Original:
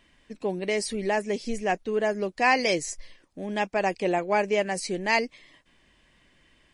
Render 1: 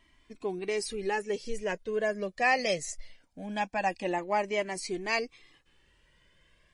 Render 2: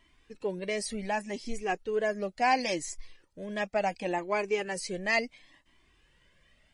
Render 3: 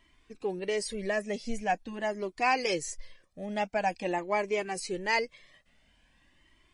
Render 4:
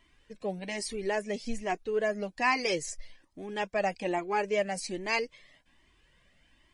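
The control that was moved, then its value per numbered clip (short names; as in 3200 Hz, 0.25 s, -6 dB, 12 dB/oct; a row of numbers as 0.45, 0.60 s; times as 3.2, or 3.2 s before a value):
cascading flanger, rate: 0.22, 0.7, 0.46, 1.2 Hz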